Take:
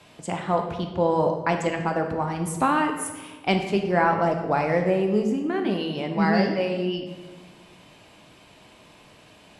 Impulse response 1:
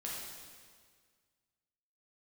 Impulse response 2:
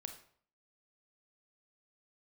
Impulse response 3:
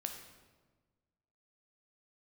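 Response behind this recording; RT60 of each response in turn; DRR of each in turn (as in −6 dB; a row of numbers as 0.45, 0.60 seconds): 3; 1.8, 0.55, 1.4 seconds; −5.0, 6.0, 4.0 decibels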